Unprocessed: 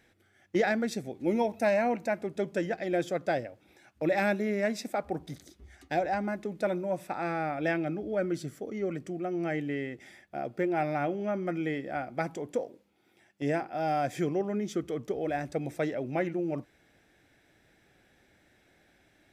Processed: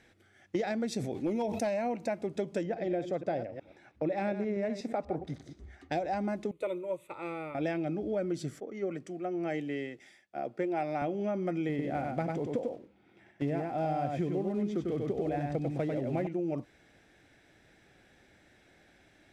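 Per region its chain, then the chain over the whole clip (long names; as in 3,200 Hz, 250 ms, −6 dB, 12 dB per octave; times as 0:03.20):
0:00.88–0:01.67: hard clipping −20.5 dBFS + level that may fall only so fast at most 70 dB per second
0:02.63–0:05.92: delay that plays each chunk backwards 121 ms, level −11.5 dB + low-pass filter 1,800 Hz 6 dB per octave
0:06.51–0:07.55: high-shelf EQ 4,400 Hz +5.5 dB + phaser with its sweep stopped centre 1,100 Hz, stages 8 + expander for the loud parts, over −48 dBFS
0:08.60–0:11.02: high-pass filter 250 Hz 6 dB per octave + multiband upward and downward expander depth 70%
0:11.69–0:16.27: one scale factor per block 5 bits + bass and treble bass +5 dB, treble −14 dB + single-tap delay 96 ms −4 dB
whole clip: low-pass filter 9,500 Hz 12 dB per octave; dynamic equaliser 1,600 Hz, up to −7 dB, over −49 dBFS, Q 1.5; downward compressor, threshold −31 dBFS; level +2.5 dB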